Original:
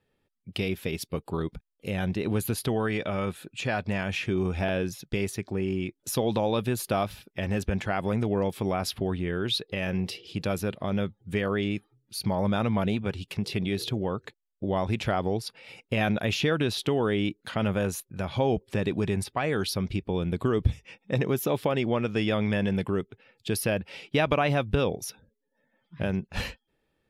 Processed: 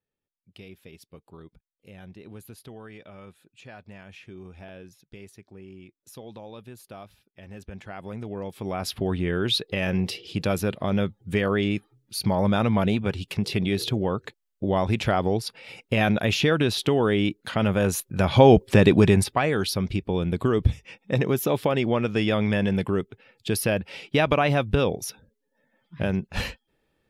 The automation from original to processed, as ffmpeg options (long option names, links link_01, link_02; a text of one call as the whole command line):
ffmpeg -i in.wav -af "volume=11.5dB,afade=type=in:start_time=7.4:duration=1.14:silence=0.334965,afade=type=in:start_time=8.54:duration=0.67:silence=0.298538,afade=type=in:start_time=17.76:duration=0.7:silence=0.421697,afade=type=out:start_time=18.96:duration=0.56:silence=0.375837" out.wav